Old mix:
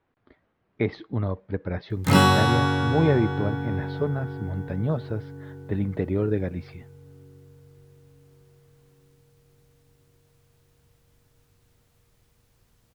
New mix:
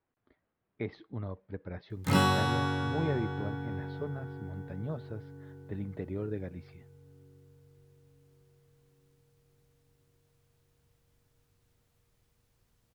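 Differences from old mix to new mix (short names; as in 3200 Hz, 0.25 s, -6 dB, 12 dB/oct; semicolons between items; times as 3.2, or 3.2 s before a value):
speech -11.5 dB; background -8.0 dB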